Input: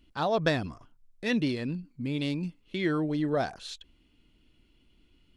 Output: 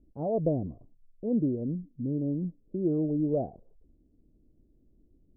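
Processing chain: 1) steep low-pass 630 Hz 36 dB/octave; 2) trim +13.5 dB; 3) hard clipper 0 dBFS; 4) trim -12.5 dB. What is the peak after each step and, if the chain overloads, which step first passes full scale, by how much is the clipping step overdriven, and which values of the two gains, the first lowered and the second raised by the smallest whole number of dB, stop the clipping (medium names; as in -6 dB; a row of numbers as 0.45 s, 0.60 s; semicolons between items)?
-16.0 dBFS, -2.5 dBFS, -2.5 dBFS, -15.0 dBFS; nothing clips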